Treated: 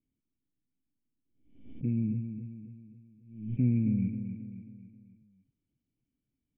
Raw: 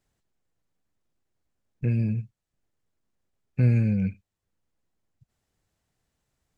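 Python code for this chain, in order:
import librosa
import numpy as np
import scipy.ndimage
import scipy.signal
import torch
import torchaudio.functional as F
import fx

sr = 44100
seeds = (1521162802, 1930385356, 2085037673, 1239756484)

y = fx.formant_cascade(x, sr, vowel='i')
y = fx.high_shelf(y, sr, hz=2000.0, db=-8.0)
y = fx.echo_feedback(y, sr, ms=268, feedback_pct=47, wet_db=-9.0)
y = fx.pre_swell(y, sr, db_per_s=86.0)
y = y * 10.0 ** (3.0 / 20.0)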